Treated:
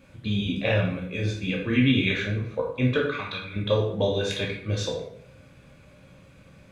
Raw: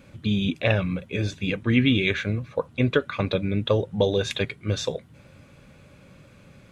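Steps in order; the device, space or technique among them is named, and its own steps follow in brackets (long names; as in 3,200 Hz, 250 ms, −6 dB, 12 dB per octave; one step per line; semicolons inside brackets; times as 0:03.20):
0:03.04–0:03.56: low shelf with overshoot 790 Hz −13 dB, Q 1.5
bathroom (convolution reverb RT60 0.60 s, pre-delay 11 ms, DRR −2.5 dB)
level −5.5 dB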